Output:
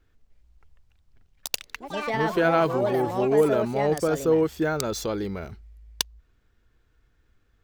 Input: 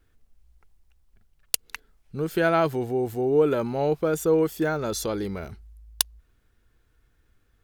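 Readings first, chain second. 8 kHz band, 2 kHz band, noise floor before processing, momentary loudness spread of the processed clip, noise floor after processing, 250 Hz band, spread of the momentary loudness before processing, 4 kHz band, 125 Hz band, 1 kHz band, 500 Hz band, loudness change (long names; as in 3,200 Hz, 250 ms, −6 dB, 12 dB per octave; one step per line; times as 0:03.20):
−3.5 dB, +2.0 dB, −66 dBFS, 11 LU, −66 dBFS, +0.5 dB, 13 LU, +0.5 dB, 0.0 dB, +2.5 dB, +1.0 dB, +0.5 dB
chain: running median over 3 samples
parametric band 9,600 Hz −8.5 dB 0.29 octaves
delay with pitch and tempo change per echo 302 ms, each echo +5 semitones, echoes 3, each echo −6 dB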